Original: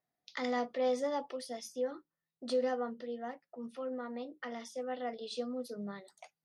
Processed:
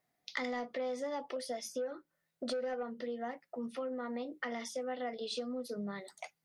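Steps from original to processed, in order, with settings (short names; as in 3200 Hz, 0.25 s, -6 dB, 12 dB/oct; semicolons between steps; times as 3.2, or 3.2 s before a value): 1.36–2.83 small resonant body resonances 590/1500 Hz, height 9 dB, ringing for 20 ms; soft clip -24 dBFS, distortion -16 dB; compressor 6:1, threshold -43 dBFS, peak gain reduction 15 dB; bell 2100 Hz +5 dB 0.27 oct; gain +7 dB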